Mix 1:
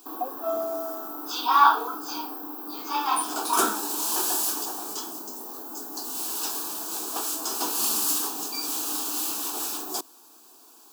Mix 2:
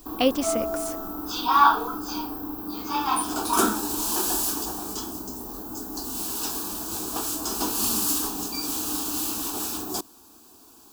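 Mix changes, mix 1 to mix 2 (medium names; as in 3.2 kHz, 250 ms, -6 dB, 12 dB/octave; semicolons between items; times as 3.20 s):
speech: remove cascade formant filter a; background: remove high-pass 400 Hz 12 dB/octave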